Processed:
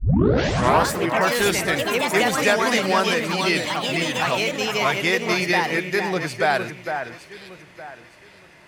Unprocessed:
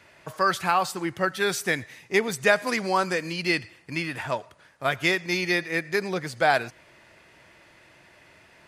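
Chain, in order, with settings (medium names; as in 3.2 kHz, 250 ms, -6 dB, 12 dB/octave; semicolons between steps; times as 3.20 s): tape start-up on the opening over 0.91 s; in parallel at +1.5 dB: peak limiter -16 dBFS, peak gain reduction 10.5 dB; on the sum: ever faster or slower copies 136 ms, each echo +3 st, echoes 3; echo whose repeats swap between lows and highs 457 ms, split 2.4 kHz, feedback 52%, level -7 dB; trim -3 dB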